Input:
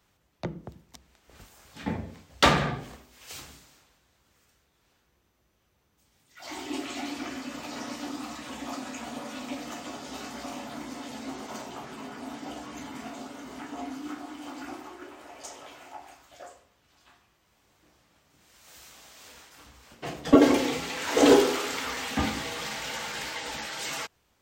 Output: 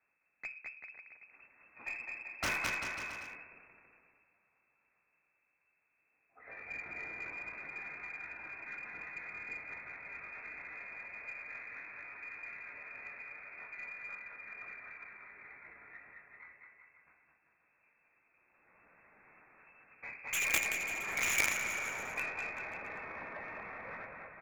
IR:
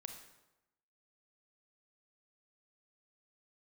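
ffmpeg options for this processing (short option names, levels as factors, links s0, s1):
-filter_complex "[0:a]lowpass=f=2300:t=q:w=0.5098,lowpass=f=2300:t=q:w=0.6013,lowpass=f=2300:t=q:w=0.9,lowpass=f=2300:t=q:w=2.563,afreqshift=-2700,acrossover=split=200[s0][s1];[s1]aeval=exprs='0.141*(abs(mod(val(0)/0.141+3,4)-2)-1)':c=same[s2];[s0][s2]amix=inputs=2:normalize=0,equalizer=f=140:t=o:w=2.6:g=5,aecho=1:1:210|388.5|540.2|669.2|778.8:0.631|0.398|0.251|0.158|0.1,aeval=exprs='0.299*(cos(1*acos(clip(val(0)/0.299,-1,1)))-cos(1*PI/2))+0.15*(cos(3*acos(clip(val(0)/0.299,-1,1)))-cos(3*PI/2))+0.00211*(cos(4*acos(clip(val(0)/0.299,-1,1)))-cos(4*PI/2))+0.0376*(cos(5*acos(clip(val(0)/0.299,-1,1)))-cos(5*PI/2))+0.00188*(cos(6*acos(clip(val(0)/0.299,-1,1)))-cos(6*PI/2))':c=same,volume=2.66"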